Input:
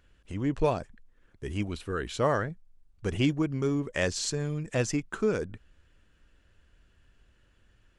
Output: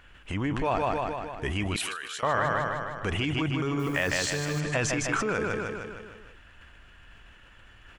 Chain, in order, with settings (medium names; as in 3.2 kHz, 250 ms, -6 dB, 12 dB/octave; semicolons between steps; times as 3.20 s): on a send: feedback delay 154 ms, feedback 51%, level -6.5 dB; on the sum: peak limiter -24 dBFS, peak gain reduction 10.5 dB; high-order bell 1.5 kHz +9 dB 2.5 oct; in parallel at 0 dB: compression, threshold -39 dBFS, peak gain reduction 14.5 dB; 1.76–2.23 s: on the sum: differentiator; 3.79–4.60 s: modulation noise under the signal 25 dB; decay stretcher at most 33 dB/s